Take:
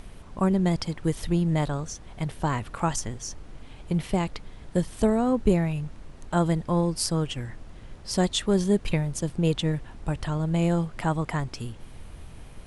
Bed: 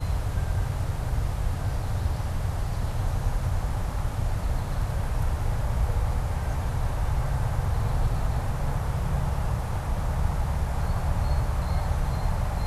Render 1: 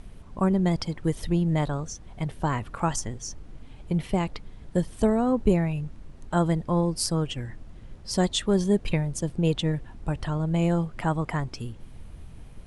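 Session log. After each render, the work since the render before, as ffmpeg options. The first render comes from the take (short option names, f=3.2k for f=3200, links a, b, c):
-af "afftdn=nr=6:nf=-45"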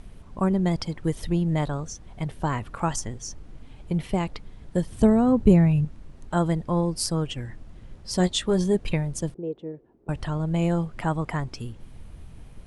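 -filter_complex "[0:a]asettb=1/sr,asplit=3[a][b][c];[a]atrim=end=4.914[d];[b]atrim=start=4.91:end=5.85,asetpts=PTS-STARTPTS,afade=t=in:d=0.004:c=qsin,afade=t=out:st=0.936:d=0.004:c=qsin,equalizer=f=110:t=o:w=2.2:g=10[e];[c]atrim=start=5.846[f];[d][e]acrossfade=d=0.004:c1=hsin:c2=qsin[g];[g][f]acrossfade=d=0.004:c1=qsin:c2=hsin,asettb=1/sr,asplit=3[h][i][j];[h]atrim=end=8.184[k];[i]atrim=start=8.18:end=8.75,asetpts=PTS-STARTPTS,afade=t=in:d=0.004:c=qsin,afade=t=out:st=0.566:d=0.004:c=qsin,asplit=2[l][m];[m]adelay=17,volume=-8.5dB[n];[l][n]amix=inputs=2:normalize=0,atrim=end_sample=25137[o];[j]atrim=start=8.746[p];[k][o]acrossfade=d=0.004:c1=hsin:c2=qsin[q];[q][p]acrossfade=d=0.004:c1=qsin:c2=hsin,asettb=1/sr,asplit=3[r][s][t];[r]atrim=end=9.344[u];[s]atrim=start=9.34:end=10.09,asetpts=PTS-STARTPTS,afade=t=in:d=0.004:c=qsin,afade=t=out:st=0.746:d=0.004:c=qsin,bandpass=f=400:t=q:w=3.2[v];[t]atrim=start=10.086[w];[u][v]acrossfade=d=0.004:c1=hsin:c2=qsin[x];[x][w]acrossfade=d=0.004:c1=qsin:c2=hsin"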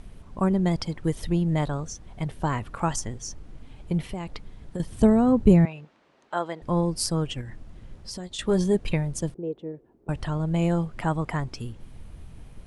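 -filter_complex "[0:a]asettb=1/sr,asplit=3[a][b][c];[a]atrim=end=4.114[d];[b]atrim=start=4.11:end=4.8,asetpts=PTS-STARTPTS,afade=t=in:d=0.004:c=qsin,afade=t=out:st=0.686:d=0.004:c=qsin,acompressor=threshold=-28dB:ratio=5:attack=3.2:release=140:knee=1:detection=peak[e];[c]atrim=start=4.796[f];[d][e]acrossfade=d=0.004:c1=hsin:c2=qsin[g];[g][f]acrossfade=d=0.004:c1=qsin:c2=hsin,asettb=1/sr,asplit=3[h][i][j];[h]atrim=end=5.654[k];[i]atrim=start=5.65:end=6.62,asetpts=PTS-STARTPTS,afade=t=in:d=0.004:c=qsin,afade=t=out:st=0.966:d=0.004:c=qsin,highpass=510,lowpass=4.4k[l];[j]atrim=start=6.616[m];[k][l]acrossfade=d=0.004:c1=hsin:c2=qsin[n];[n][m]acrossfade=d=0.004:c1=qsin:c2=hsin,asettb=1/sr,asplit=3[o][p][q];[o]atrim=end=7.414[r];[p]atrim=start=7.41:end=8.39,asetpts=PTS-STARTPTS,afade=t=in:d=0.004:c=qsin,afade=t=out:st=0.976:d=0.004:c=qsin,acompressor=threshold=-33dB:ratio=6:attack=3.2:release=140:knee=1:detection=peak[s];[q]atrim=start=8.386[t];[r][s]acrossfade=d=0.004:c1=hsin:c2=qsin[u];[u][t]acrossfade=d=0.004:c1=qsin:c2=hsin"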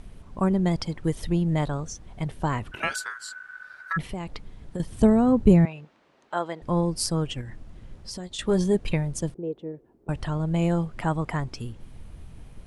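-filter_complex "[0:a]asplit=3[a][b][c];[a]afade=t=out:st=2.71:d=0.02[d];[b]aeval=exprs='val(0)*sin(2*PI*1500*n/s)':c=same,afade=t=in:st=2.71:d=0.02,afade=t=out:st=3.96:d=0.02[e];[c]afade=t=in:st=3.96:d=0.02[f];[d][e][f]amix=inputs=3:normalize=0"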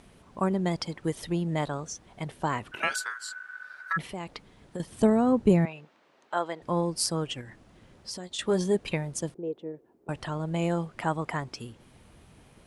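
-af "highpass=f=300:p=1"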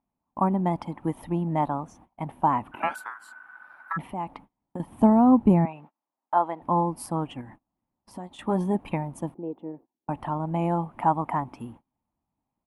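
-af "agate=range=-31dB:threshold=-48dB:ratio=16:detection=peak,firequalizer=gain_entry='entry(140,0);entry(270,8);entry(420,-6);entry(860,12);entry(1500,-6);entry(2400,-5);entry(4600,-21);entry(7200,-18);entry(11000,-4)':delay=0.05:min_phase=1"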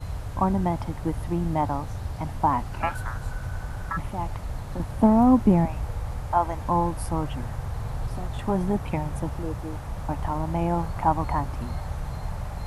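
-filter_complex "[1:a]volume=-5.5dB[a];[0:a][a]amix=inputs=2:normalize=0"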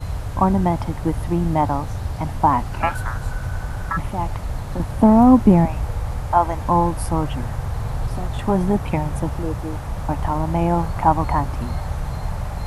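-af "volume=6dB,alimiter=limit=-2dB:level=0:latency=1"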